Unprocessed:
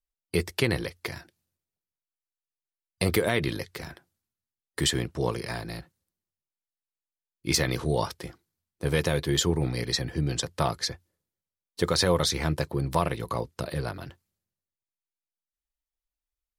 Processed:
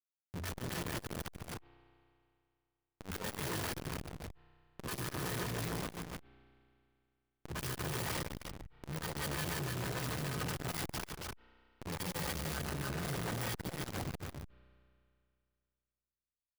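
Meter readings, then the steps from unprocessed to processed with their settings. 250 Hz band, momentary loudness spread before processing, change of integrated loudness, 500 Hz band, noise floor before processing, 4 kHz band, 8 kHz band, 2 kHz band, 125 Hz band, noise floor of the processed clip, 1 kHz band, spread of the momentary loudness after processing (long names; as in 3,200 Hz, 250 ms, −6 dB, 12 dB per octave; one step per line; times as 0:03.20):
−11.0 dB, 16 LU, −11.5 dB, −14.5 dB, below −85 dBFS, −13.0 dB, −10.0 dB, −8.5 dB, −10.0 dB, below −85 dBFS, −9.0 dB, 12 LU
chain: samples in bit-reversed order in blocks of 32 samples
downward expander −47 dBFS
parametric band 190 Hz +5.5 dB 0.24 octaves
harmonic and percussive parts rebalanced percussive −17 dB
dynamic equaliser 1,400 Hz, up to +6 dB, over −56 dBFS, Q 2.2
downward compressor 10 to 1, threshold −29 dBFS, peak gain reduction 11 dB
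noise that follows the level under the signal 30 dB
all-pass dispersion highs, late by 103 ms, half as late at 1,100 Hz
comparator with hysteresis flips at −43.5 dBFS
loudspeakers that aren't time-aligned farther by 50 metres −6 dB, 100 metres −4 dB
spring reverb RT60 2.4 s, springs 32 ms, chirp 40 ms, DRR 19.5 dB
saturating transformer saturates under 330 Hz
level +1.5 dB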